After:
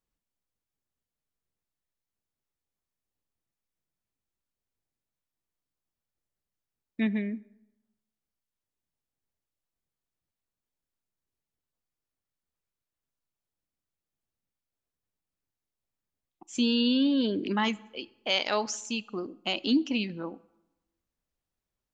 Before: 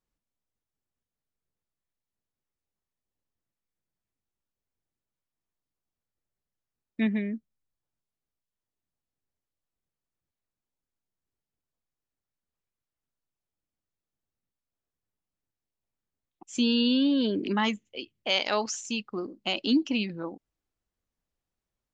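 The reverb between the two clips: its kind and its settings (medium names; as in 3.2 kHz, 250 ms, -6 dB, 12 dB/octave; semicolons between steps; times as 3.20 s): plate-style reverb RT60 1 s, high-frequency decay 0.65×, DRR 19.5 dB; trim -1 dB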